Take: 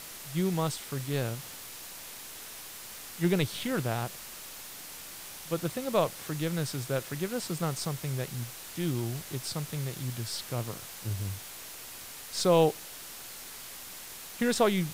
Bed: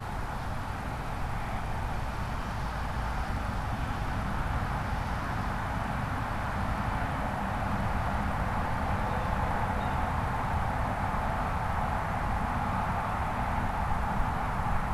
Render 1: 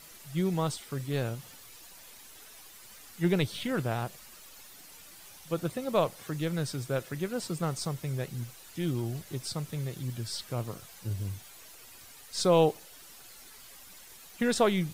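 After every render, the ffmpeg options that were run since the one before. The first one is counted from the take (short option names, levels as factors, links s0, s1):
-af "afftdn=nr=10:nf=-45"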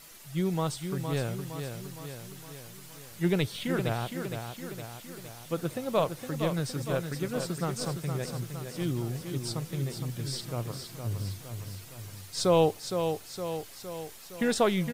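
-af "aecho=1:1:463|926|1389|1852|2315|2778|3241:0.447|0.255|0.145|0.0827|0.0472|0.0269|0.0153"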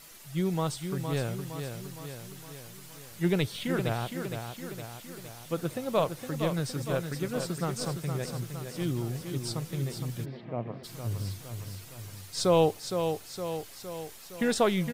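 -filter_complex "[0:a]asplit=3[s0][s1][s2];[s0]afade=t=out:st=10.24:d=0.02[s3];[s1]highpass=120,equalizer=f=150:t=q:w=4:g=-4,equalizer=f=220:t=q:w=4:g=6,equalizer=f=670:t=q:w=4:g=6,equalizer=f=1400:t=q:w=4:g=-9,lowpass=f=2300:w=0.5412,lowpass=f=2300:w=1.3066,afade=t=in:st=10.24:d=0.02,afade=t=out:st=10.83:d=0.02[s4];[s2]afade=t=in:st=10.83:d=0.02[s5];[s3][s4][s5]amix=inputs=3:normalize=0"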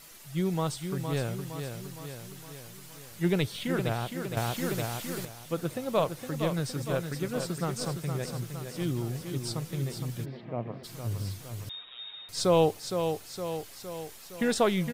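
-filter_complex "[0:a]asettb=1/sr,asplit=3[s0][s1][s2];[s0]atrim=end=11.694[s3];[s1]atrim=start=11.69:end=12.29,asetpts=PTS-STARTPTS,afade=t=in:d=0.004:c=qsin,afade=t=out:st=0.596:d=0.004:c=qsin,lowpass=f=3200:t=q:w=0.5098,lowpass=f=3200:t=q:w=0.6013,lowpass=f=3200:t=q:w=0.9,lowpass=f=3200:t=q:w=2.563,afreqshift=-3800[s4];[s2]atrim=start=12.286[s5];[s3][s4]acrossfade=d=0.004:c1=hsin:c2=qsin[s6];[s6][s5]acrossfade=d=0.004:c1=qsin:c2=hsin,asplit=3[s7][s8][s9];[s7]atrim=end=4.372[s10];[s8]atrim=start=4.368:end=5.252,asetpts=PTS-STARTPTS,volume=2.66[s11];[s9]atrim=start=5.248[s12];[s10][s11]acrossfade=d=0.004:c1=hsin:c2=hsin[s13];[s13][s12]acrossfade=d=0.004:c1=hsin:c2=hsin"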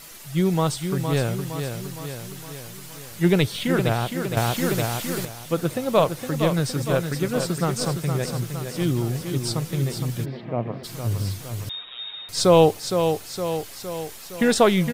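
-af "volume=2.51"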